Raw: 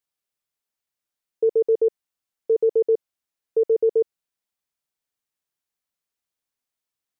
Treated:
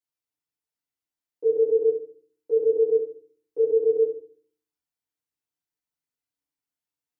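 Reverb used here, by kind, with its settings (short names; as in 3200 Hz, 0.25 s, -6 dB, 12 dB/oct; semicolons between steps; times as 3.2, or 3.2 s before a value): FDN reverb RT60 0.48 s, low-frequency decay 1.6×, high-frequency decay 0.75×, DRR -8.5 dB; gain -14.5 dB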